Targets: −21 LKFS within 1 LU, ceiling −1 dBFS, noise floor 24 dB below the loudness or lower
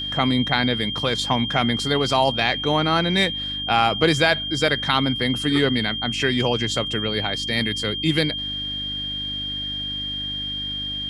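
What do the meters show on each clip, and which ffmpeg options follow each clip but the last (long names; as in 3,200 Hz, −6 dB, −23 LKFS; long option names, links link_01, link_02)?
mains hum 50 Hz; hum harmonics up to 300 Hz; level of the hum −36 dBFS; interfering tone 3,200 Hz; level of the tone −26 dBFS; integrated loudness −21.5 LKFS; sample peak −3.5 dBFS; target loudness −21.0 LKFS
→ -af "bandreject=frequency=50:width_type=h:width=4,bandreject=frequency=100:width_type=h:width=4,bandreject=frequency=150:width_type=h:width=4,bandreject=frequency=200:width_type=h:width=4,bandreject=frequency=250:width_type=h:width=4,bandreject=frequency=300:width_type=h:width=4"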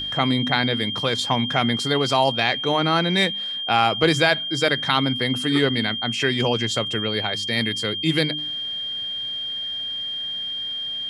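mains hum none found; interfering tone 3,200 Hz; level of the tone −26 dBFS
→ -af "bandreject=frequency=3200:width=30"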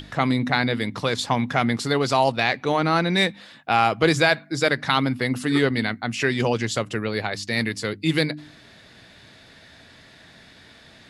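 interfering tone none found; integrated loudness −22.5 LKFS; sample peak −4.0 dBFS; target loudness −21.0 LKFS
→ -af "volume=1.5dB"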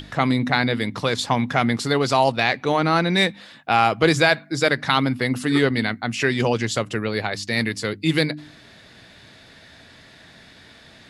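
integrated loudness −21.0 LKFS; sample peak −2.5 dBFS; background noise floor −48 dBFS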